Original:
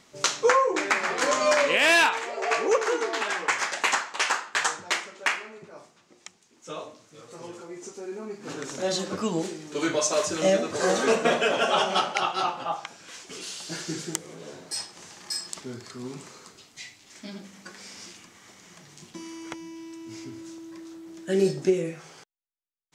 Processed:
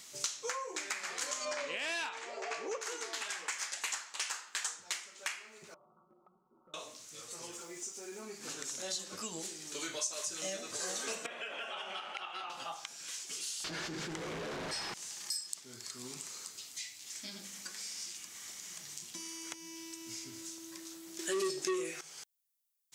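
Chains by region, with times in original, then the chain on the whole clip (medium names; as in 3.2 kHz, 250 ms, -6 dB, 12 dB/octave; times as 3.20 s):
1.45–2.81 s: low-pass 6.7 kHz + tilt shelf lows +5 dB, about 1.3 kHz
5.74–6.74 s: Chebyshev low-pass 1.4 kHz, order 10 + comb 5.4 ms, depth 89% + compression 16:1, threshold -53 dBFS
7.51–8.21 s: band-stop 4.2 kHz, Q 15 + added noise pink -74 dBFS
11.26–12.50 s: high-pass 230 Hz + resonant high shelf 3.7 kHz -13.5 dB, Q 1.5 + compression 4:1, threshold -28 dBFS
13.64–14.94 s: jump at every zero crossing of -24 dBFS + Bessel low-pass 1.4 kHz + level flattener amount 70%
21.19–22.01 s: peaking EQ 370 Hz +14 dB 0.24 oct + overdrive pedal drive 21 dB, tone 6.8 kHz, clips at 0 dBFS
whole clip: pre-emphasis filter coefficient 0.9; compression 2.5:1, threshold -54 dBFS; trim +11 dB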